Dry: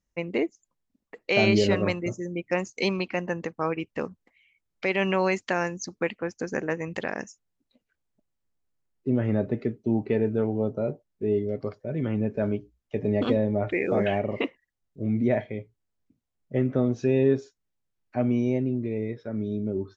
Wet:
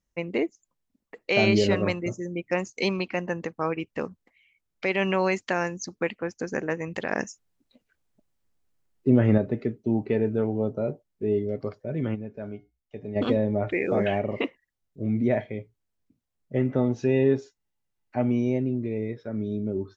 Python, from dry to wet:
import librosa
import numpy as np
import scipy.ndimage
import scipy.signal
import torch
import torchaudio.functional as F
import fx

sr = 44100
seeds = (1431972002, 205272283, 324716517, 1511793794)

y = fx.comb_fb(x, sr, f0_hz=720.0, decay_s=0.26, harmonics='all', damping=0.0, mix_pct=70, at=(12.14, 13.15), fade=0.02)
y = fx.small_body(y, sr, hz=(860.0, 2000.0, 2800.0), ring_ms=45, db=fx.line((16.59, 11.0), (18.3, 8.0)), at=(16.59, 18.3), fade=0.02)
y = fx.edit(y, sr, fx.clip_gain(start_s=7.11, length_s=2.27, db=5.5), tone=tone)